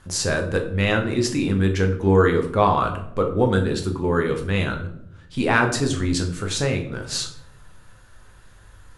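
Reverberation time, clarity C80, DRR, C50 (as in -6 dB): 0.75 s, 13.0 dB, 3.0 dB, 9.5 dB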